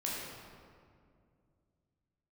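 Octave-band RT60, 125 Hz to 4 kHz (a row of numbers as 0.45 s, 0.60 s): 3.6 s, 3.0 s, 2.5 s, 2.0 s, 1.6 s, 1.2 s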